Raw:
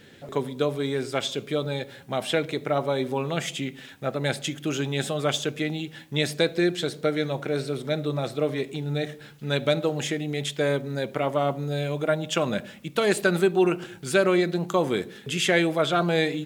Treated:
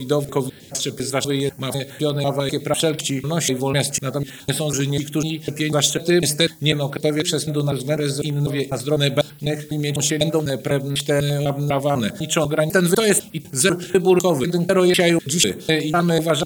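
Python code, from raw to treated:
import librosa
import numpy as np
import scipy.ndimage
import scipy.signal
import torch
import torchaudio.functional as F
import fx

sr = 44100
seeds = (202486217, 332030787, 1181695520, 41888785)

y = fx.block_reorder(x, sr, ms=249.0, group=3)
y = fx.bass_treble(y, sr, bass_db=4, treble_db=12)
y = fx.filter_held_notch(y, sr, hz=10.0, low_hz=750.0, high_hz=6600.0)
y = y * 10.0 ** (5.0 / 20.0)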